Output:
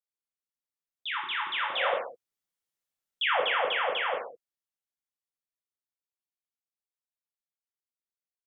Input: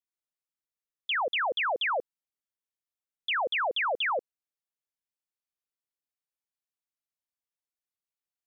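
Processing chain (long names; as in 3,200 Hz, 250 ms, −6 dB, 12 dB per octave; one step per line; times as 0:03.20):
source passing by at 0:02.75, 12 m/s, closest 9.2 metres
healed spectral selection 0:00.94–0:01.86, 400–820 Hz both
reverb whose tail is shaped and stops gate 230 ms falling, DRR −2.5 dB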